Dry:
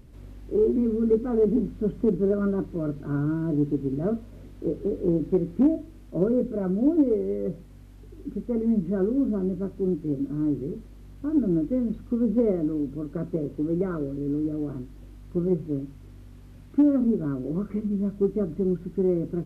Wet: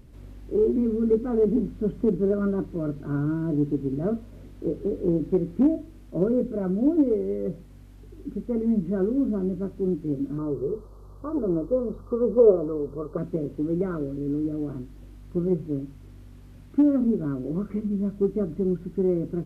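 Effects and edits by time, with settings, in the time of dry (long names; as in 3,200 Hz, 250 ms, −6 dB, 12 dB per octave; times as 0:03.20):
0:10.38–0:13.18: drawn EQ curve 110 Hz 0 dB, 290 Hz −8 dB, 420 Hz +10 dB, 720 Hz +4 dB, 1,200 Hz +13 dB, 1,900 Hz −25 dB, 4,300 Hz −3 dB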